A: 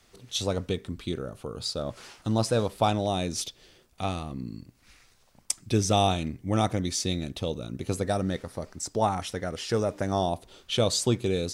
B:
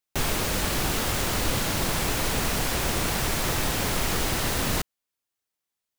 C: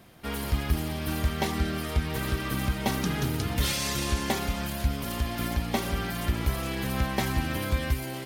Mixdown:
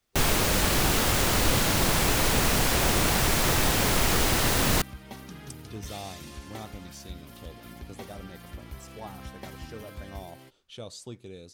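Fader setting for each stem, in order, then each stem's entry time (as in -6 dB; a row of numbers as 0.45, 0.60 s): -17.0, +2.5, -15.0 dB; 0.00, 0.00, 2.25 s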